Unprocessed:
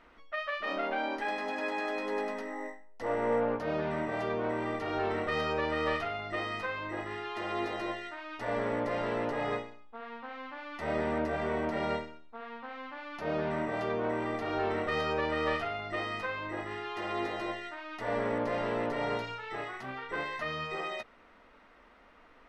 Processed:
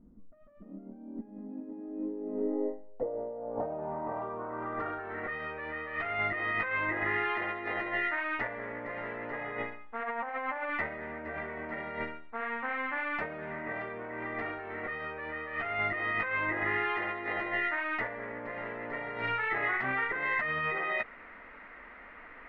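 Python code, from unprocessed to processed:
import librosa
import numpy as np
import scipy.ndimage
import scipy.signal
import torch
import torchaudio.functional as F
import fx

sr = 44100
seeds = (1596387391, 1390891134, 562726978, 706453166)

y = fx.peak_eq(x, sr, hz=700.0, db=15.0, octaves=1.2, at=(10.03, 10.68), fade=0.02)
y = fx.over_compress(y, sr, threshold_db=-39.0, ratio=-1.0)
y = fx.filter_sweep_lowpass(y, sr, from_hz=210.0, to_hz=2000.0, start_s=1.42, end_s=5.4, q=3.4)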